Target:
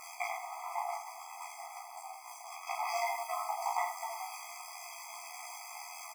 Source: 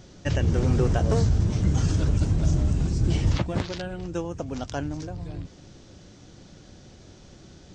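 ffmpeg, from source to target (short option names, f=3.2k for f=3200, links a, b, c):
-filter_complex "[0:a]asoftclip=type=tanh:threshold=-23dB,tremolo=f=66:d=0.788,highshelf=f=2.6k:g=-11.5,asplit=2[a][b];[b]aecho=0:1:104:0.376[c];[a][c]amix=inputs=2:normalize=0,acrusher=bits=8:mix=0:aa=0.000001,asuperstop=centerf=2900:order=20:qfactor=5.6,asplit=2[d][e];[e]adelay=45,volume=-3dB[f];[d][f]amix=inputs=2:normalize=0,flanger=delay=19:depth=3:speed=1.2,asetrate=55566,aresample=44100,areverse,acompressor=threshold=-36dB:ratio=16,areverse,highpass=f=890:p=1,afftfilt=real='re*eq(mod(floor(b*sr/1024/650),2),1)':imag='im*eq(mod(floor(b*sr/1024/650),2),1)':win_size=1024:overlap=0.75,volume=18dB"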